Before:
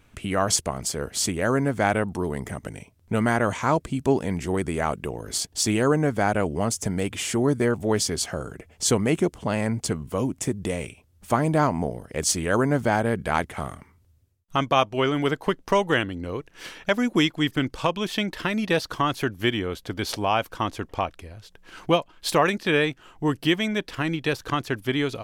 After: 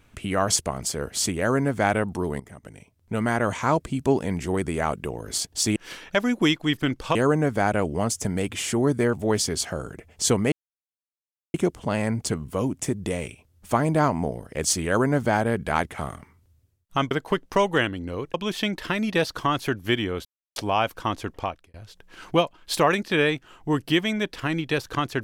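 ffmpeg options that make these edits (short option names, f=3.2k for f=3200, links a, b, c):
-filter_complex "[0:a]asplit=10[a][b][c][d][e][f][g][h][i][j];[a]atrim=end=2.4,asetpts=PTS-STARTPTS,afade=t=out:st=2.396:d=0.004:c=hsin:silence=0.188365[k];[b]atrim=start=2.4:end=5.762,asetpts=PTS-STARTPTS,afade=t=in:d=1.19:silence=0.188365[l];[c]atrim=start=16.498:end=17.892[m];[d]atrim=start=5.758:end=9.13,asetpts=PTS-STARTPTS,afade=t=out:st=3.368:d=0.004:c=hsin,apad=pad_dur=1.02[n];[e]atrim=start=9.13:end=14.702,asetpts=PTS-STARTPTS,afade=t=in:d=0.004:c=hsin[o];[f]atrim=start=15.268:end=16.502[p];[g]atrim=start=17.888:end=19.8,asetpts=PTS-STARTPTS,afade=t=out:st=1.908:d=0.004:c=hsin[q];[h]atrim=start=19.8:end=20.11,asetpts=PTS-STARTPTS,volume=0[r];[i]atrim=start=20.11:end=21.29,asetpts=PTS-STARTPTS,afade=t=in:d=0.004:c=hsin,afade=t=out:st=0.8:d=0.38[s];[j]atrim=start=21.29,asetpts=PTS-STARTPTS,afade=t=in:d=0.004:c=hsin[t];[k][l]concat=n=2:v=0:a=1[u];[u][m]acrossfade=d=0.004:c1=hsin:c2=hsin[v];[n][o]concat=n=2:v=0:a=1[w];[v][w]acrossfade=d=0.004:c1=hsin:c2=hsin[x];[x][p]acrossfade=d=0.004:c1=hsin:c2=hsin[y];[q][r][s][t]concat=n=4:v=0:a=1[z];[y][z]acrossfade=d=0.004:c1=hsin:c2=hsin"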